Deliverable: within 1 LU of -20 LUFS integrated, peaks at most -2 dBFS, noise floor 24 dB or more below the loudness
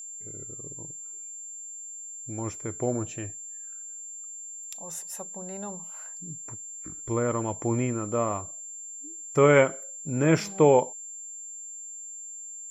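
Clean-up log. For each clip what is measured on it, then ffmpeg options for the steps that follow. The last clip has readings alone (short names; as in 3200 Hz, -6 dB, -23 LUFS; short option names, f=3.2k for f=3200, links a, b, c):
steady tone 7300 Hz; tone level -38 dBFS; loudness -29.0 LUFS; peak -8.0 dBFS; loudness target -20.0 LUFS
-> -af "bandreject=f=7.3k:w=30"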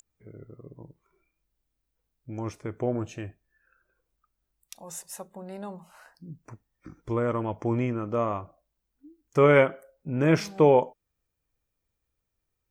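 steady tone none; loudness -25.5 LUFS; peak -8.0 dBFS; loudness target -20.0 LUFS
-> -af "volume=5.5dB"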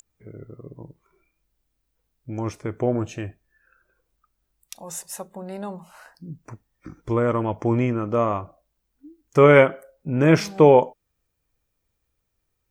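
loudness -20.0 LUFS; peak -2.5 dBFS; noise floor -77 dBFS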